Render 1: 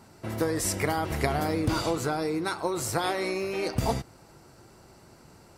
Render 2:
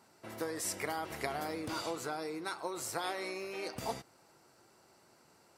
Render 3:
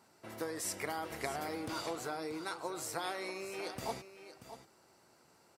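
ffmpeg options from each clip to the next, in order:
ffmpeg -i in.wav -af "highpass=frequency=450:poles=1,volume=-7.5dB" out.wav
ffmpeg -i in.wav -af "aecho=1:1:634:0.251,volume=-1.5dB" out.wav

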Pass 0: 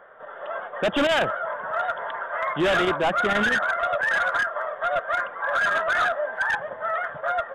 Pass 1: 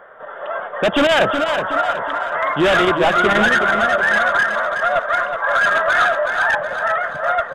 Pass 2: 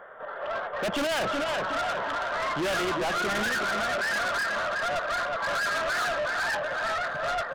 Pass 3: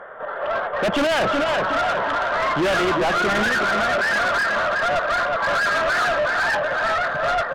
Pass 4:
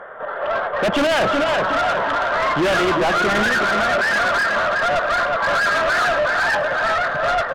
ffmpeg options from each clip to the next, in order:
ffmpeg -i in.wav -af "aecho=1:1:370|740|1110|1480|1850:0.447|0.197|0.0865|0.0381|0.0167,volume=6.5dB" out.wav
ffmpeg -i in.wav -af "asoftclip=type=tanh:threshold=-22.5dB,volume=-3.5dB" out.wav
ffmpeg -i in.wav -af "aemphasis=mode=reproduction:type=cd,volume=8dB" out.wav
ffmpeg -i in.wav -filter_complex "[0:a]asplit=2[link_01][link_02];[link_02]adelay=105,volume=-17dB,highshelf=frequency=4000:gain=-2.36[link_03];[link_01][link_03]amix=inputs=2:normalize=0,volume=2dB" out.wav

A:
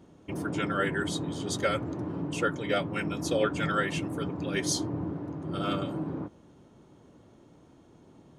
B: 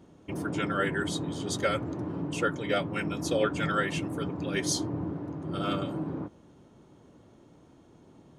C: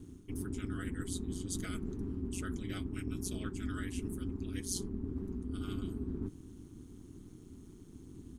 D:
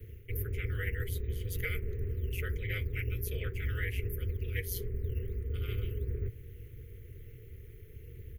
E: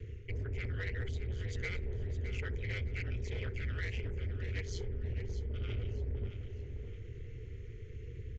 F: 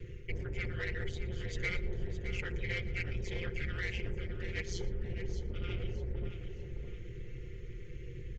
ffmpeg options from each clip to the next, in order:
ffmpeg -i in.wav -af anull out.wav
ffmpeg -i in.wav -af "firequalizer=gain_entry='entry(110,0);entry(190,6);entry(470,-25);entry(1100,-13);entry(9800,8)':delay=0.05:min_phase=1,areverse,acompressor=threshold=-41dB:ratio=6,areverse,aeval=exprs='val(0)*sin(2*PI*93*n/s)':channel_layout=same,volume=8dB" out.wav
ffmpeg -i in.wav -filter_complex "[0:a]acrossover=split=110|560|1700[link_01][link_02][link_03][link_04];[link_01]acrusher=samples=9:mix=1:aa=0.000001:lfo=1:lforange=14.4:lforate=1.4[link_05];[link_05][link_02][link_03][link_04]amix=inputs=4:normalize=0,firequalizer=gain_entry='entry(120,0);entry(170,-18);entry(280,-26);entry(470,7);entry(750,-29);entry(2000,9);entry(3700,-12);entry(8300,-23);entry(13000,10)':delay=0.05:min_phase=1,volume=8dB" out.wav
ffmpeg -i in.wav -af "aresample=16000,asoftclip=type=tanh:threshold=-31.5dB,aresample=44100,aecho=1:1:614|1228|1842:0.299|0.0925|0.0287,acompressor=threshold=-44dB:ratio=1.5,volume=3.5dB" out.wav
ffmpeg -i in.wav -filter_complex "[0:a]aecho=1:1:5.7:0.78,asplit=2[link_01][link_02];[link_02]adelay=116.6,volume=-20dB,highshelf=frequency=4000:gain=-2.62[link_03];[link_01][link_03]amix=inputs=2:normalize=0,volume=1.5dB" out.wav

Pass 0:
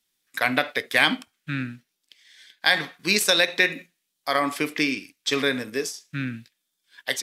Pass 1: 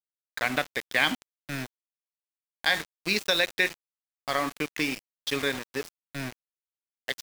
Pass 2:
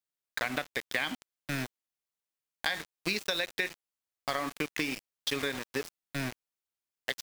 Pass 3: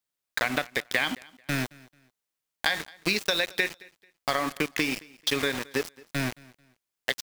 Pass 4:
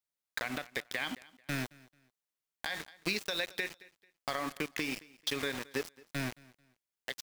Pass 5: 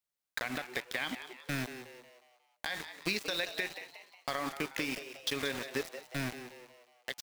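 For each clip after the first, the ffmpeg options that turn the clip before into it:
ffmpeg -i in.wav -filter_complex "[0:a]acrossover=split=6500[link_01][link_02];[link_02]acompressor=threshold=-52dB:ratio=4:attack=1:release=60[link_03];[link_01][link_03]amix=inputs=2:normalize=0,aeval=exprs='val(0)*gte(abs(val(0)),0.0473)':channel_layout=same,volume=-4.5dB" out.wav
ffmpeg -i in.wav -af "acompressor=threshold=-30dB:ratio=6,volume=2dB" out.wav
ffmpeg -i in.wav -af "aecho=1:1:220|440:0.0668|0.0194,volume=5.5dB" out.wav
ffmpeg -i in.wav -af "alimiter=limit=-13dB:level=0:latency=1:release=101,volume=-7dB" out.wav
ffmpeg -i in.wav -filter_complex "[0:a]asplit=6[link_01][link_02][link_03][link_04][link_05][link_06];[link_02]adelay=181,afreqshift=120,volume=-11dB[link_07];[link_03]adelay=362,afreqshift=240,volume=-17.9dB[link_08];[link_04]adelay=543,afreqshift=360,volume=-24.9dB[link_09];[link_05]adelay=724,afreqshift=480,volume=-31.8dB[link_10];[link_06]adelay=905,afreqshift=600,volume=-38.7dB[link_11];[link_01][link_07][link_08][link_09][link_10][link_11]amix=inputs=6:normalize=0" out.wav

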